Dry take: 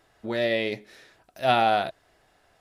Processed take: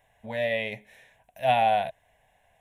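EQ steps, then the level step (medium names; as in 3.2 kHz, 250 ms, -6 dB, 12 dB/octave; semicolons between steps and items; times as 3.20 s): static phaser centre 1.3 kHz, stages 6; 0.0 dB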